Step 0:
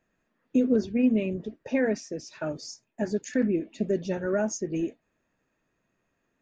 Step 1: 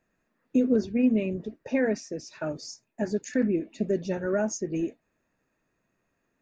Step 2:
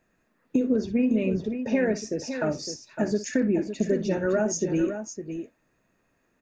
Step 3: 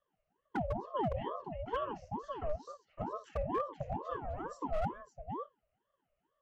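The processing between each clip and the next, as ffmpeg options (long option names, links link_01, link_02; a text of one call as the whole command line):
ffmpeg -i in.wav -af "equalizer=frequency=3200:width_type=o:width=0.2:gain=-6" out.wav
ffmpeg -i in.wav -filter_complex "[0:a]acompressor=threshold=-25dB:ratio=5,asplit=2[link_01][link_02];[link_02]aecho=0:1:58|559:0.2|0.355[link_03];[link_01][link_03]amix=inputs=2:normalize=0,volume=5dB" out.wav
ffmpeg -i in.wav -filter_complex "[0:a]asplit=3[link_01][link_02][link_03];[link_01]bandpass=frequency=300:width_type=q:width=8,volume=0dB[link_04];[link_02]bandpass=frequency=870:width_type=q:width=8,volume=-6dB[link_05];[link_03]bandpass=frequency=2240:width_type=q:width=8,volume=-9dB[link_06];[link_04][link_05][link_06]amix=inputs=3:normalize=0,acrossover=split=1700[link_07][link_08];[link_07]aeval=exprs='0.0422*(abs(mod(val(0)/0.0422+3,4)-2)-1)':channel_layout=same[link_09];[link_09][link_08]amix=inputs=2:normalize=0,aeval=exprs='val(0)*sin(2*PI*590*n/s+590*0.5/2.2*sin(2*PI*2.2*n/s))':channel_layout=same,volume=2dB" out.wav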